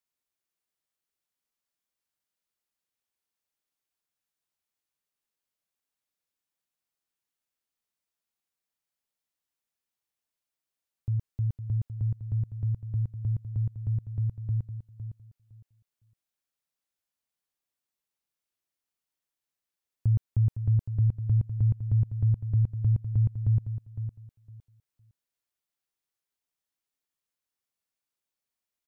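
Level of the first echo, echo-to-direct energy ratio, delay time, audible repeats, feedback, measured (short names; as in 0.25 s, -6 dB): -10.0 dB, -10.0 dB, 0.509 s, 2, 19%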